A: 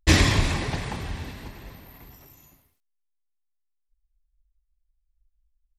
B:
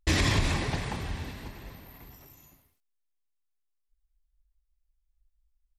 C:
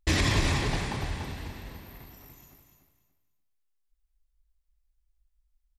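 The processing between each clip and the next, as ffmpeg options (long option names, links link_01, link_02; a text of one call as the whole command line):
ffmpeg -i in.wav -af "alimiter=limit=-13dB:level=0:latency=1:release=82,volume=-2dB" out.wav
ffmpeg -i in.wav -af "aecho=1:1:290|580|870:0.447|0.112|0.0279" out.wav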